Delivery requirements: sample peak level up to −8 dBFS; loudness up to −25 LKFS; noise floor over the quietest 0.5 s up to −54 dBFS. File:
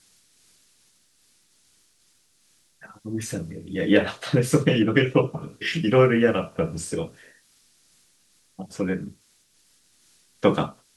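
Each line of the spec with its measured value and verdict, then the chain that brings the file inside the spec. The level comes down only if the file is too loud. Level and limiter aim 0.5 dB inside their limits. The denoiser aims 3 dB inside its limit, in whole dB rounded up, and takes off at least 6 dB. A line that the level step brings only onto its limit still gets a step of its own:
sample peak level −4.0 dBFS: out of spec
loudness −23.5 LKFS: out of spec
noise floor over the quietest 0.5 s −63 dBFS: in spec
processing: level −2 dB
brickwall limiter −8.5 dBFS

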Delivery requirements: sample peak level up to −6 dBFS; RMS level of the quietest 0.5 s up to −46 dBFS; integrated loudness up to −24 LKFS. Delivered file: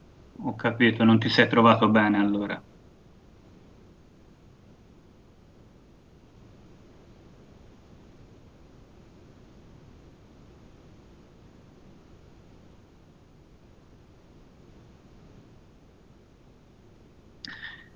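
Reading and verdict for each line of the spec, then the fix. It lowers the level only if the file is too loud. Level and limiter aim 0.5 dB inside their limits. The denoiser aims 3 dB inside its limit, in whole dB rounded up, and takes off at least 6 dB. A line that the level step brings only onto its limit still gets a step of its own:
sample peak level −4.0 dBFS: out of spec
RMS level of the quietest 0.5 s −55 dBFS: in spec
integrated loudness −22.0 LKFS: out of spec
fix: level −2.5 dB

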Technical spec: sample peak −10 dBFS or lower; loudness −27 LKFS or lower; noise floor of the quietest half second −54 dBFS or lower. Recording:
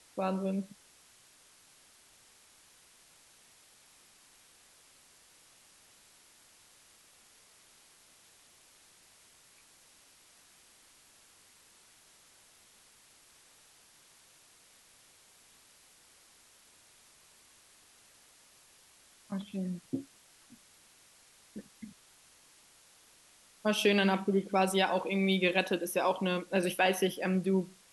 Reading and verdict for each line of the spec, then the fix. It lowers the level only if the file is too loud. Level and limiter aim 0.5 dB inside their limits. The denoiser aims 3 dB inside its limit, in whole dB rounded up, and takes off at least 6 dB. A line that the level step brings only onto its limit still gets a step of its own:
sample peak −12.5 dBFS: in spec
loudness −30.5 LKFS: in spec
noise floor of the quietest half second −62 dBFS: in spec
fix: no processing needed

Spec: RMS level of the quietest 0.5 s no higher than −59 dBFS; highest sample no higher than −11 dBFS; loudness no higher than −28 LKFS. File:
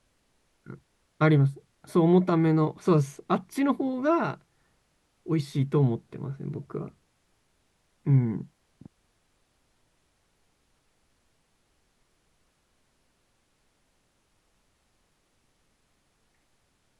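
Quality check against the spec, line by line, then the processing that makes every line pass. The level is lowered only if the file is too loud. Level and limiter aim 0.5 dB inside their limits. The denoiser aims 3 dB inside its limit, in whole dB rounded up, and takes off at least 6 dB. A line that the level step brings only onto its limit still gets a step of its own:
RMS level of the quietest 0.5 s −70 dBFS: in spec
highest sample −10.0 dBFS: out of spec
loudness −25.5 LKFS: out of spec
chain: level −3 dB

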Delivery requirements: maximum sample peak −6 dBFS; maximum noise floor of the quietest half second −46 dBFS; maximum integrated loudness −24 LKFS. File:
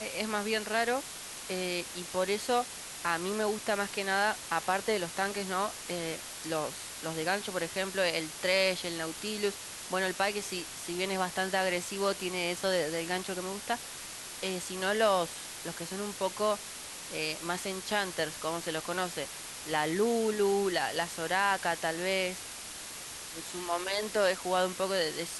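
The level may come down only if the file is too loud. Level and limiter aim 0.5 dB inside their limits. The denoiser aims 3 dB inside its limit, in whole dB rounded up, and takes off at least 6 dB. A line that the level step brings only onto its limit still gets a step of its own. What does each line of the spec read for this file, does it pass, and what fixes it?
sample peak −14.0 dBFS: in spec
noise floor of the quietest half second −43 dBFS: out of spec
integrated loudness −32.0 LKFS: in spec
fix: broadband denoise 6 dB, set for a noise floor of −43 dBFS

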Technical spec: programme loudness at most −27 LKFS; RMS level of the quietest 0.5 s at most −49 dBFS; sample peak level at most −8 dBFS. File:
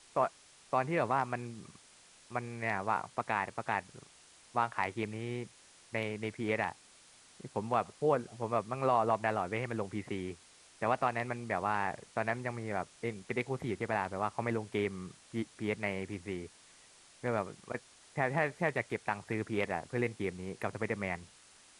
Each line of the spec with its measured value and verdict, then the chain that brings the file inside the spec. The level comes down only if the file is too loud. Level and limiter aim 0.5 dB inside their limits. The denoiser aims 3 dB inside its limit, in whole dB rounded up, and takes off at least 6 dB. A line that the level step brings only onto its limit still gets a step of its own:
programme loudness −35.5 LKFS: in spec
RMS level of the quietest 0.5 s −60 dBFS: in spec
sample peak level −15.5 dBFS: in spec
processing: no processing needed

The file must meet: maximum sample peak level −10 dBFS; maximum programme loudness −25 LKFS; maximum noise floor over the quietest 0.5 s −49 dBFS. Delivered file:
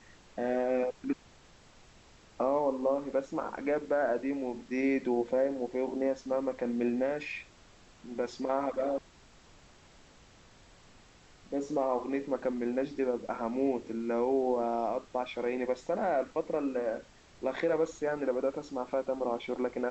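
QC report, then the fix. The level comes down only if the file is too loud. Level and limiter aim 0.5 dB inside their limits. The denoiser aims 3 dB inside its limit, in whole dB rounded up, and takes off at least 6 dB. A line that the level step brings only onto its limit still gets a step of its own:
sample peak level −17.0 dBFS: in spec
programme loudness −32.5 LKFS: in spec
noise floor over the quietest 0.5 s −58 dBFS: in spec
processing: no processing needed

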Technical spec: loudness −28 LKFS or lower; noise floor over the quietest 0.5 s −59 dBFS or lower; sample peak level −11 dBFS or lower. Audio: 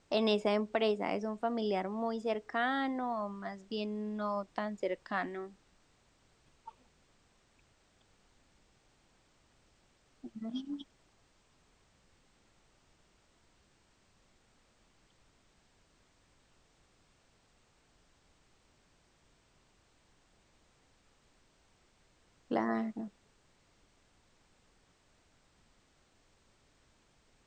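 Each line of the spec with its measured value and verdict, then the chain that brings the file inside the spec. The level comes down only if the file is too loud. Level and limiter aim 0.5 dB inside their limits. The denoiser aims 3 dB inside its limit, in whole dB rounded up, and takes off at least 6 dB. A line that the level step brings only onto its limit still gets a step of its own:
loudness −35.5 LKFS: in spec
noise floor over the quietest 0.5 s −69 dBFS: in spec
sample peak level −15.5 dBFS: in spec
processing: no processing needed

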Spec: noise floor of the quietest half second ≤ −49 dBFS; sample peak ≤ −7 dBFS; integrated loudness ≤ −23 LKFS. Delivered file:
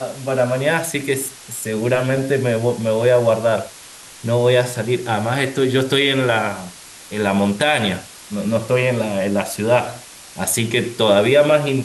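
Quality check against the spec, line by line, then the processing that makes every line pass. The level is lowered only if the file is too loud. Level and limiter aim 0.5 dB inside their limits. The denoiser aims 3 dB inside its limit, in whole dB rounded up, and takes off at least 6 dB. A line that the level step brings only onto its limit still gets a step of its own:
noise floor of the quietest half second −40 dBFS: out of spec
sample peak −4.0 dBFS: out of spec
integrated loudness −18.0 LKFS: out of spec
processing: broadband denoise 7 dB, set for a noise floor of −40 dBFS
level −5.5 dB

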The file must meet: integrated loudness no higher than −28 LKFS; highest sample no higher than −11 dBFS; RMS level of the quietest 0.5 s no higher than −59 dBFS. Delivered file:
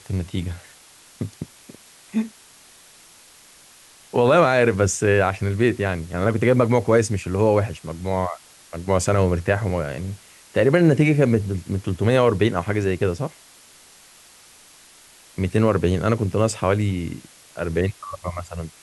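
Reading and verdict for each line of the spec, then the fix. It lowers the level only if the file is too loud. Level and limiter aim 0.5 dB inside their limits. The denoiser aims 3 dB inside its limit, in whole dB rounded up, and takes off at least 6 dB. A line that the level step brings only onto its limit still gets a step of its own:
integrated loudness −21.0 LKFS: out of spec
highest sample −5.5 dBFS: out of spec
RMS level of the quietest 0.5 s −49 dBFS: out of spec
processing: broadband denoise 6 dB, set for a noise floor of −49 dBFS
level −7.5 dB

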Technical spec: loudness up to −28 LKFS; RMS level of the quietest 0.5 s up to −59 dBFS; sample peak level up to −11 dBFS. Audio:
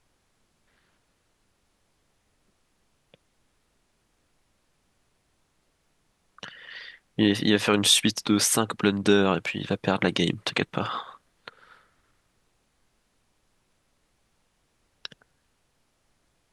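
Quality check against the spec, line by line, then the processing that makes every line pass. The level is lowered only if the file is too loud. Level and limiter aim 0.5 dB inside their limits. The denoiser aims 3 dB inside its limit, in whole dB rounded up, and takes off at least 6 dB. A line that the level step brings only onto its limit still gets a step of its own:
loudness −23.5 LKFS: out of spec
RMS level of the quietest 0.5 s −70 dBFS: in spec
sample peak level −5.5 dBFS: out of spec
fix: level −5 dB
brickwall limiter −11.5 dBFS

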